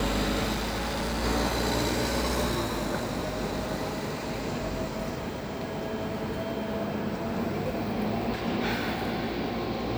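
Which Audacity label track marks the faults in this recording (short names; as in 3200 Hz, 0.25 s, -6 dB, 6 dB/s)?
0.520000	1.240000	clipped -27 dBFS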